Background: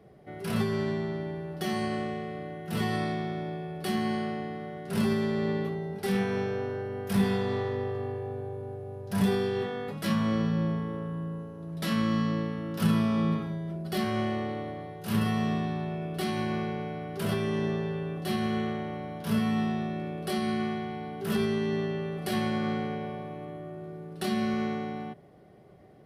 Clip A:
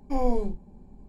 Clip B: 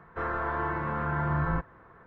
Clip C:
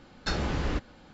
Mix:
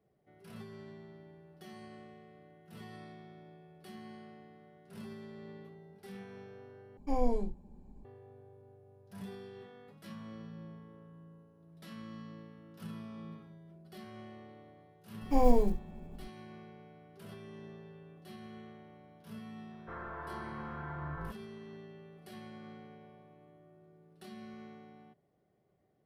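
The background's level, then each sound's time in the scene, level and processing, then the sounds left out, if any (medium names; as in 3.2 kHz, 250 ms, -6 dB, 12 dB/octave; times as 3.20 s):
background -20 dB
6.97 s: replace with A -5.5 dB
15.21 s: add A + block-companded coder 7-bit
19.71 s: add B -13 dB
not used: C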